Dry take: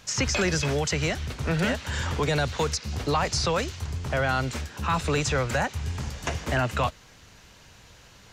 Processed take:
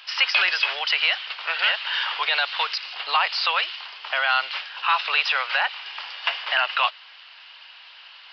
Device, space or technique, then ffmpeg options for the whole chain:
musical greeting card: -filter_complex "[0:a]aresample=11025,aresample=44100,highpass=frequency=860:width=0.5412,highpass=frequency=860:width=1.3066,equalizer=frequency=2900:width_type=o:width=0.42:gain=9.5,asettb=1/sr,asplit=3[link_01][link_02][link_03];[link_01]atrim=end=2.944[link_04];[link_02]atrim=start=2.94:end=3.72,asetpts=PTS-STARTPTS,afade=type=in:duration=0.004:curve=qsin,afade=type=out:start_time=0.776:duration=0.004:curve=qsin,lowpass=frequency=5100:width=0.5412,lowpass=frequency=5100:width=1.3066[link_05];[link_03]atrim=start=3.716[link_06];[link_04][link_05]acrossfade=duration=0.004:curve1=hsin:curve2=qsin[link_07];[link_07][link_06]acrossfade=duration=0.004:curve1=qsin:curve2=hsin,volume=6dB"

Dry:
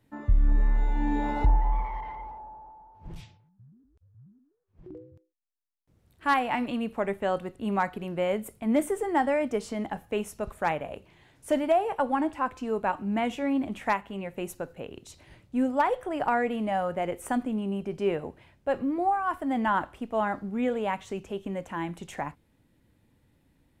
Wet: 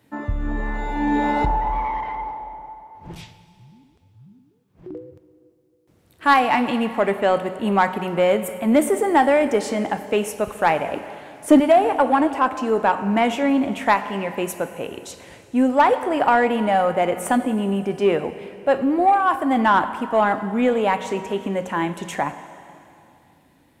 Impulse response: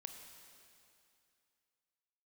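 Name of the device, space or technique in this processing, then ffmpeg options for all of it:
saturated reverb return: -filter_complex "[0:a]highpass=frequency=220:poles=1,asettb=1/sr,asplit=3[link_01][link_02][link_03];[link_01]atrim=end=10.924[link_04];[link_02]atrim=start=10.92:end=11.6,asetpts=PTS-STARTPTS,afade=type=in:duration=0.004:curve=qsin,afade=type=out:start_time=0.676:duration=0.004:curve=qsin,equalizer=frequency=290:width_type=o:width=0.58:gain=12[link_05];[link_03]atrim=start=11.596[link_06];[link_04][link_05]acrossfade=duration=0.004:curve1=hsin:curve2=qsin[link_07];[link_07][link_06]acrossfade=duration=0.004:curve1=qsin:curve2=hsin,asplit=2[link_08][link_09];[1:a]atrim=start_sample=2205[link_10];[link_09][link_10]afir=irnorm=-1:irlink=0,asoftclip=type=tanh:threshold=-27.5dB,volume=4.5dB[link_11];[link_08][link_11]amix=inputs=2:normalize=0,volume=5.5dB"

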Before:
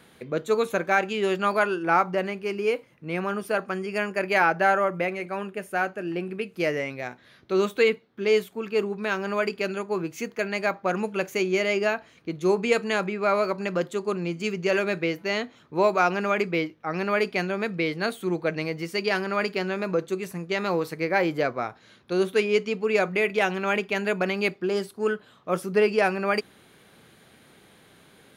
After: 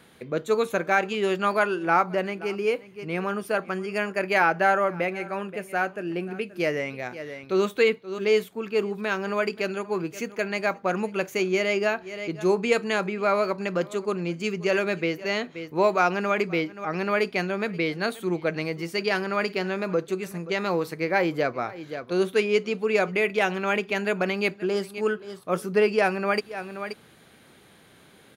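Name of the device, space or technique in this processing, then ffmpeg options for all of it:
ducked delay: -filter_complex "[0:a]asplit=3[link_01][link_02][link_03];[link_02]adelay=528,volume=-9dB[link_04];[link_03]apad=whole_len=1274206[link_05];[link_04][link_05]sidechaincompress=threshold=-41dB:ratio=8:attack=16:release=157[link_06];[link_01][link_06]amix=inputs=2:normalize=0"

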